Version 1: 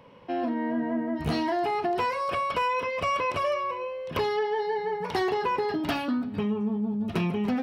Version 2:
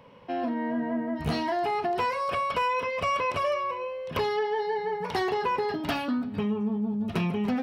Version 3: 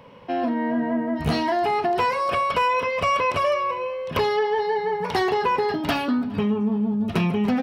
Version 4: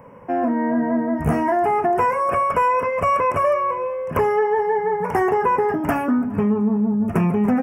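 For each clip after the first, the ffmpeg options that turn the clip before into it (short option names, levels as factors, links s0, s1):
-af "equalizer=f=330:w=6:g=-6"
-filter_complex "[0:a]asplit=2[s0][s1];[s1]adelay=413,lowpass=f=3500:p=1,volume=0.0631,asplit=2[s2][s3];[s3]adelay=413,lowpass=f=3500:p=1,volume=0.54,asplit=2[s4][s5];[s5]adelay=413,lowpass=f=3500:p=1,volume=0.54[s6];[s0][s2][s4][s6]amix=inputs=4:normalize=0,volume=1.88"
-af "asuperstop=centerf=3900:order=4:qfactor=0.68,volume=1.5"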